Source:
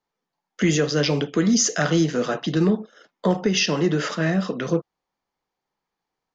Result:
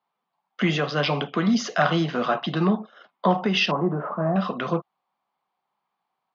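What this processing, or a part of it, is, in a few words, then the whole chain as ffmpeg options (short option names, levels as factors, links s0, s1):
kitchen radio: -filter_complex "[0:a]highpass=190,equalizer=f=300:t=q:w=4:g=-10,equalizer=f=460:t=q:w=4:g=-9,equalizer=f=740:t=q:w=4:g=5,equalizer=f=1100:t=q:w=4:g=7,equalizer=f=1800:t=q:w=4:g=-5,lowpass=f=3800:w=0.5412,lowpass=f=3800:w=1.3066,asettb=1/sr,asplit=3[s0][s1][s2];[s0]atrim=end=3.714[s3];[s1]atrim=start=3.71:end=4.36,asetpts=PTS-STARTPTS,afade=t=in:d=0.004:c=qsin,afade=t=out:st=0.646:d=0.004:c=qsin,lowpass=f=1100:w=0.5412,lowpass=f=1100:w=1.3066[s4];[s2]atrim=start=4.356[s5];[s3][s4]acrossfade=d=0.004:c1=hsin:c2=qsin[s6];[s6][s5]acrossfade=d=0.004:c1=qsin:c2=hsin,volume=1.33"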